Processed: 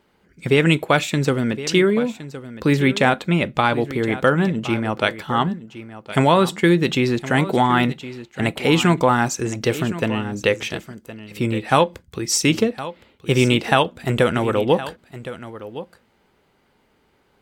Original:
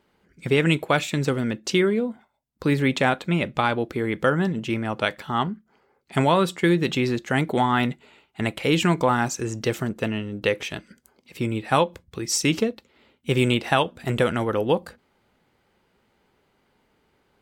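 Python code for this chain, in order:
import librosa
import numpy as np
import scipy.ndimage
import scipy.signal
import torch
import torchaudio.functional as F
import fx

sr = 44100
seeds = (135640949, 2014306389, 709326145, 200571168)

y = x + 10.0 ** (-14.5 / 20.0) * np.pad(x, (int(1065 * sr / 1000.0), 0))[:len(x)]
y = y * 10.0 ** (4.0 / 20.0)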